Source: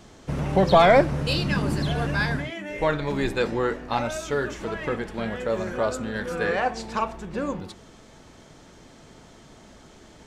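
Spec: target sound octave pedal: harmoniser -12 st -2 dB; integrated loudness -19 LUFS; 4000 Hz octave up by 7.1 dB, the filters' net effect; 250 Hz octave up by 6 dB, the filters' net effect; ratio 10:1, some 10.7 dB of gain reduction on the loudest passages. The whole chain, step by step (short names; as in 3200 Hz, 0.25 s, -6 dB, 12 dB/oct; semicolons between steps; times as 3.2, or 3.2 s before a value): bell 250 Hz +8 dB; bell 4000 Hz +8.5 dB; compressor 10:1, threshold -20 dBFS; harmoniser -12 st -2 dB; gain +5.5 dB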